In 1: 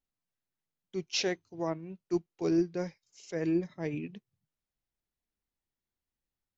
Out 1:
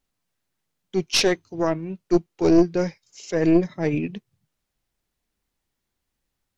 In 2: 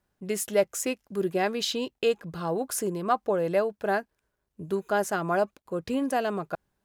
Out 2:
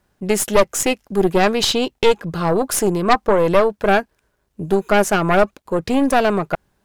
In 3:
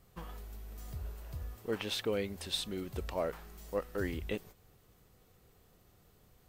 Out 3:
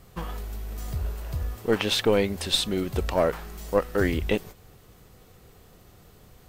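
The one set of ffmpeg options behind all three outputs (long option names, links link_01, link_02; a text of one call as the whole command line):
ffmpeg -i in.wav -af "aeval=exprs='0.282*(cos(1*acos(clip(val(0)/0.282,-1,1)))-cos(1*PI/2))+0.0891*(cos(4*acos(clip(val(0)/0.282,-1,1)))-cos(4*PI/2))+0.0501*(cos(5*acos(clip(val(0)/0.282,-1,1)))-cos(5*PI/2))':channel_layout=same,highshelf=frequency=12000:gain=-4,volume=6.5dB" out.wav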